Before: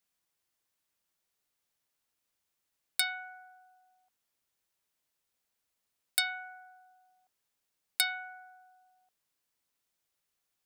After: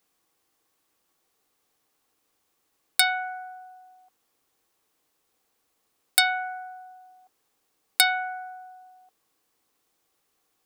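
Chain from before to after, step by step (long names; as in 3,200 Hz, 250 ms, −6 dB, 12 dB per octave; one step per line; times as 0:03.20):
hollow resonant body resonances 320/450/770/1,100 Hz, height 9 dB, ringing for 25 ms
level +8.5 dB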